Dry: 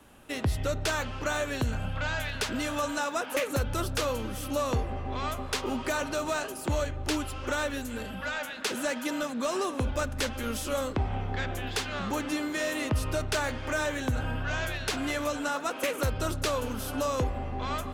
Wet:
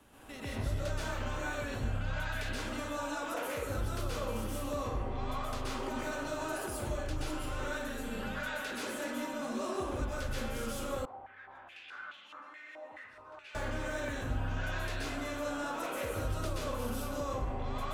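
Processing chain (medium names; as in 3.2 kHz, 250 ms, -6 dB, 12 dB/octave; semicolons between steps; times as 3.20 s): peak limiter -31.5 dBFS, peak gain reduction 11.5 dB; plate-style reverb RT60 0.91 s, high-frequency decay 0.55×, pre-delay 115 ms, DRR -7.5 dB; 11.05–13.55 s: step-sequenced band-pass 4.7 Hz 810–3100 Hz; trim -6 dB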